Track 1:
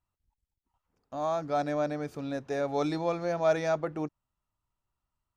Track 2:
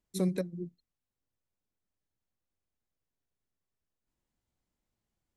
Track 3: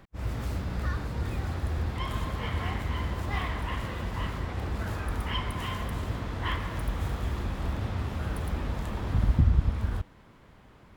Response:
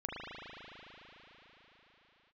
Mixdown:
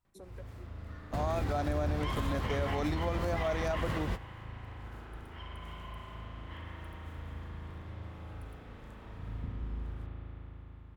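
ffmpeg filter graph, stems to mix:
-filter_complex "[0:a]volume=1.12,asplit=2[s0][s1];[1:a]highpass=590,afwtdn=0.00398,alimiter=level_in=4.47:limit=0.0631:level=0:latency=1:release=391,volume=0.224,volume=0.708[s2];[2:a]adelay=50,volume=1.19,asplit=2[s3][s4];[s4]volume=0.106[s5];[s1]apad=whole_len=485899[s6];[s3][s6]sidechaingate=range=0.0224:threshold=0.00794:ratio=16:detection=peak[s7];[3:a]atrim=start_sample=2205[s8];[s5][s8]afir=irnorm=-1:irlink=0[s9];[s0][s2][s7][s9]amix=inputs=4:normalize=0,alimiter=limit=0.0668:level=0:latency=1:release=90"

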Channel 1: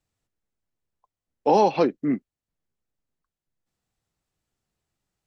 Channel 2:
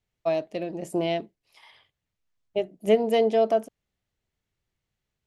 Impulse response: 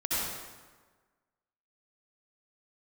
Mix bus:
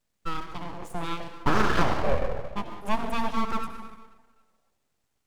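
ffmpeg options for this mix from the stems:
-filter_complex "[0:a]acompressor=threshold=0.0891:ratio=6,volume=1.19,asplit=2[s0][s1];[s1]volume=0.398[s2];[1:a]highpass=f=110:w=0.5412,highpass=f=110:w=1.3066,volume=0.562,asplit=2[s3][s4];[s4]volume=0.237[s5];[2:a]atrim=start_sample=2205[s6];[s2][s5]amix=inputs=2:normalize=0[s7];[s7][s6]afir=irnorm=-1:irlink=0[s8];[s0][s3][s8]amix=inputs=3:normalize=0,aeval=exprs='abs(val(0))':c=same"

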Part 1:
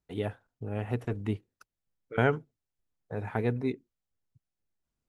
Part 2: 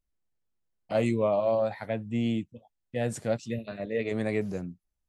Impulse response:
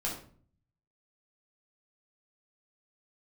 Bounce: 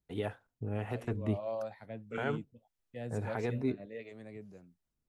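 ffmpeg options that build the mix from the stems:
-filter_complex "[0:a]alimiter=limit=0.0944:level=0:latency=1,volume=1.06[s0];[1:a]volume=0.316,afade=t=in:st=1.1:d=0.36:silence=0.223872,afade=t=out:st=3.86:d=0.26:silence=0.446684[s1];[s0][s1]amix=inputs=2:normalize=0,acrossover=split=420[s2][s3];[s2]aeval=exprs='val(0)*(1-0.5/2+0.5/2*cos(2*PI*1.6*n/s))':c=same[s4];[s3]aeval=exprs='val(0)*(1-0.5/2-0.5/2*cos(2*PI*1.6*n/s))':c=same[s5];[s4][s5]amix=inputs=2:normalize=0"

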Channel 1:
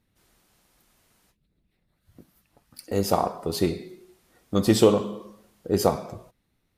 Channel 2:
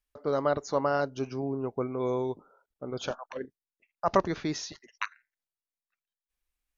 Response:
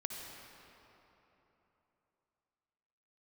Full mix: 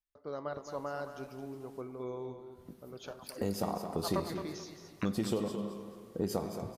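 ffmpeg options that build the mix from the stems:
-filter_complex "[0:a]equalizer=f=190:w=1.7:g=6,acompressor=threshold=0.0398:ratio=5,adelay=500,volume=0.562,asplit=3[s0][s1][s2];[s1]volume=0.376[s3];[s2]volume=0.447[s4];[1:a]flanger=delay=9.1:depth=8.7:regen=83:speed=0.6:shape=triangular,volume=0.376,asplit=3[s5][s6][s7];[s6]volume=0.178[s8];[s7]volume=0.398[s9];[2:a]atrim=start_sample=2205[s10];[s3][s8]amix=inputs=2:normalize=0[s11];[s11][s10]afir=irnorm=-1:irlink=0[s12];[s4][s9]amix=inputs=2:normalize=0,aecho=0:1:219|438|657|876:1|0.29|0.0841|0.0244[s13];[s0][s5][s12][s13]amix=inputs=4:normalize=0"

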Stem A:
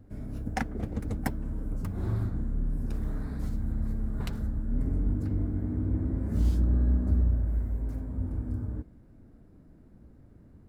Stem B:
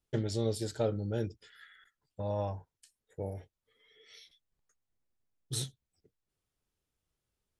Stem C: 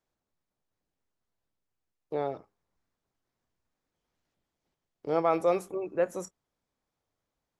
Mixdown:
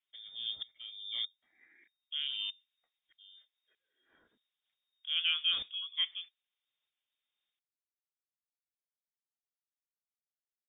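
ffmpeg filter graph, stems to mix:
-filter_complex "[1:a]aeval=exprs='val(0)*pow(10,-25*if(lt(mod(-1.6*n/s,1),2*abs(-1.6)/1000),1-mod(-1.6*n/s,1)/(2*abs(-1.6)/1000),(mod(-1.6*n/s,1)-2*abs(-1.6)/1000)/(1-2*abs(-1.6)/1000))/20)':c=same,volume=0.841[s0];[2:a]volume=0.473[s1];[s0][s1]amix=inputs=2:normalize=0,equalizer=f=1600:t=o:w=0.93:g=2.5,lowpass=f=3100:t=q:w=0.5098,lowpass=f=3100:t=q:w=0.6013,lowpass=f=3100:t=q:w=0.9,lowpass=f=3100:t=q:w=2.563,afreqshift=-3700"

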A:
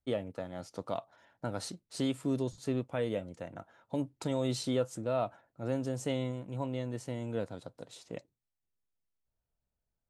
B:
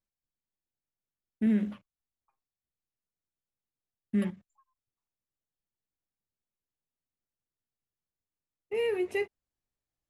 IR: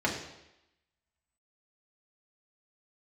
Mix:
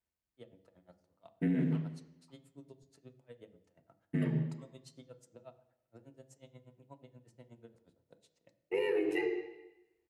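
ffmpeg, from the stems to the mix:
-filter_complex "[0:a]acrossover=split=150|3000[s0][s1][s2];[s1]acompressor=threshold=0.0178:ratio=2.5[s3];[s0][s3][s2]amix=inputs=3:normalize=0,aeval=exprs='val(0)*pow(10,-32*(0.5-0.5*cos(2*PI*8.3*n/s))/20)':c=same,adelay=300,volume=0.178,asplit=2[s4][s5];[s5]volume=0.15[s6];[1:a]aeval=exprs='val(0)*sin(2*PI*47*n/s)':c=same,volume=0.631,asplit=2[s7][s8];[s8]volume=0.668[s9];[2:a]atrim=start_sample=2205[s10];[s6][s9]amix=inputs=2:normalize=0[s11];[s11][s10]afir=irnorm=-1:irlink=0[s12];[s4][s7][s12]amix=inputs=3:normalize=0,alimiter=limit=0.0708:level=0:latency=1:release=104"

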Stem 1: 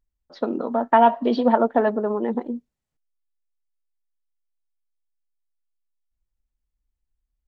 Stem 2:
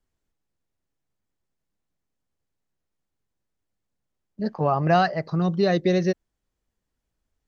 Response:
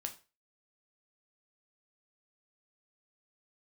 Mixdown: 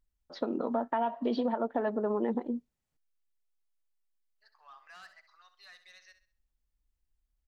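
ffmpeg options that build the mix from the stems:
-filter_complex "[0:a]alimiter=limit=0.188:level=0:latency=1:release=454,volume=0.891[s0];[1:a]highpass=f=1200:w=0.5412,highpass=f=1200:w=1.3066,asoftclip=type=tanh:threshold=0.0398,volume=0.112,asplit=2[s1][s2];[s2]volume=0.266,aecho=0:1:66|132|198|264|330:1|0.36|0.13|0.0467|0.0168[s3];[s0][s1][s3]amix=inputs=3:normalize=0,acompressor=threshold=0.0355:ratio=2"

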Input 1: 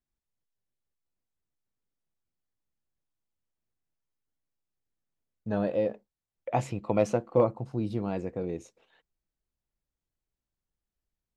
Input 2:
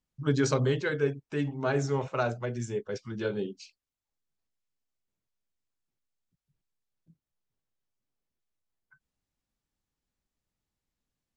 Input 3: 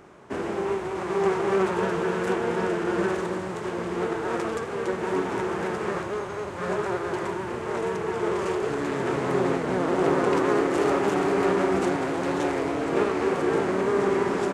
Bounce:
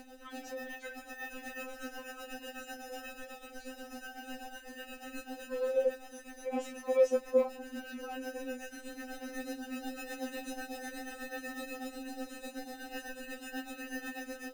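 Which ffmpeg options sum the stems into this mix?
-filter_complex "[0:a]volume=0.708[s0];[1:a]highpass=f=320:w=0.5412,highpass=f=320:w=1.3066,acrossover=split=520[s1][s2];[s1]aeval=exprs='val(0)*(1-0.7/2+0.7/2*cos(2*PI*1.8*n/s))':c=same[s3];[s2]aeval=exprs='val(0)*(1-0.7/2-0.7/2*cos(2*PI*1.8*n/s))':c=same[s4];[s3][s4]amix=inputs=2:normalize=0,volume=0.224[s5];[2:a]tremolo=f=8.1:d=0.73,acrusher=samples=40:mix=1:aa=0.000001,volume=0.266[s6];[s0][s5][s6]amix=inputs=3:normalize=0,acompressor=mode=upward:threshold=0.0178:ratio=2.5,afftfilt=real='re*3.46*eq(mod(b,12),0)':imag='im*3.46*eq(mod(b,12),0)':win_size=2048:overlap=0.75"

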